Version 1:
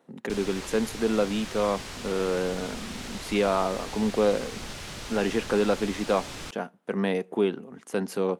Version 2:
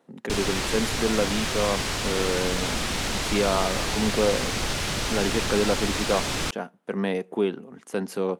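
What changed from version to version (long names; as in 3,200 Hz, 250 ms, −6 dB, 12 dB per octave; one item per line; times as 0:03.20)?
background +11.0 dB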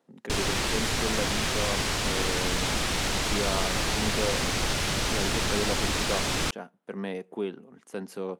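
speech −7.5 dB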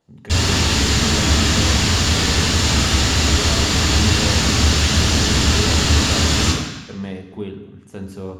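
speech: remove high-pass filter 200 Hz 24 dB per octave
reverb: on, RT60 1.0 s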